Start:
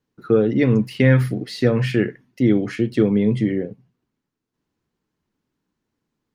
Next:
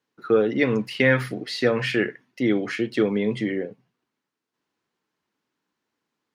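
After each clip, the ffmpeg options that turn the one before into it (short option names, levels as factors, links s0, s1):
-af "highpass=f=810:p=1,highshelf=f=8000:g=-10.5,volume=1.68"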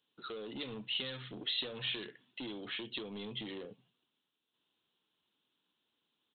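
-af "acompressor=threshold=0.0316:ratio=10,aresample=8000,asoftclip=type=tanh:threshold=0.0211,aresample=44100,aexciter=amount=12.4:drive=3:freq=3100,volume=0.501"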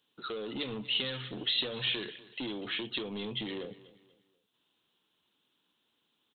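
-af "aecho=1:1:243|486|729:0.119|0.0416|0.0146,volume=1.88"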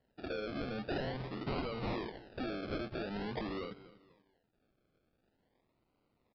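-af "aresample=16000,asoftclip=type=tanh:threshold=0.0266,aresample=44100,acrusher=samples=36:mix=1:aa=0.000001:lfo=1:lforange=21.6:lforate=0.46,aresample=11025,aresample=44100"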